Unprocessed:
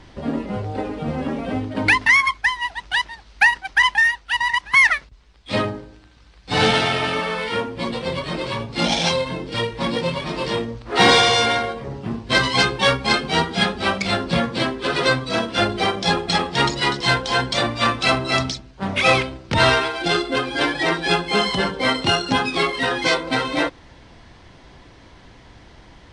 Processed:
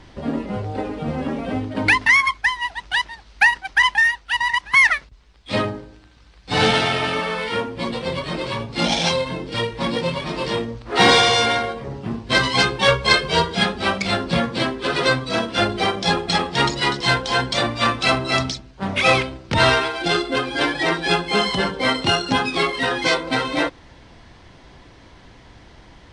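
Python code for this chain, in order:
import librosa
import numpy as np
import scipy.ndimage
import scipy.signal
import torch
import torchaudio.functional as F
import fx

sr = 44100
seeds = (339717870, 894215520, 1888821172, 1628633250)

y = fx.comb(x, sr, ms=1.9, depth=0.72, at=(12.88, 13.55))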